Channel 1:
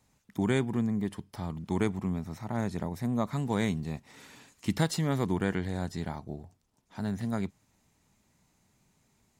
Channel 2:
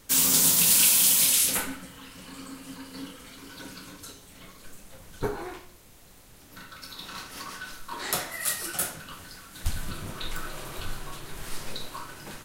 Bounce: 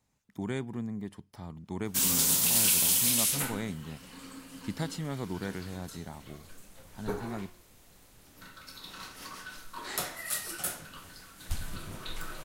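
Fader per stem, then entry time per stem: -7.0, -5.0 dB; 0.00, 1.85 s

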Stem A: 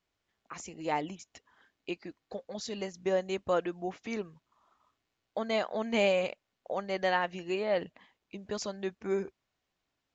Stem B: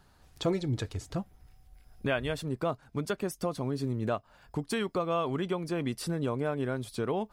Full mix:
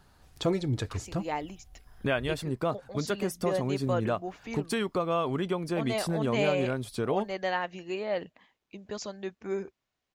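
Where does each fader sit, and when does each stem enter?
-1.5, +1.5 dB; 0.40, 0.00 s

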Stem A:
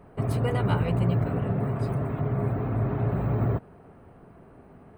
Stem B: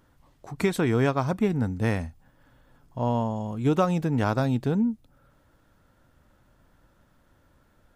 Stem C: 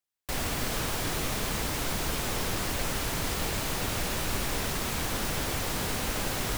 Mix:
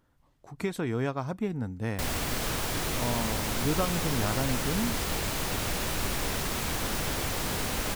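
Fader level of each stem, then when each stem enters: off, -7.0 dB, 0.0 dB; off, 0.00 s, 1.70 s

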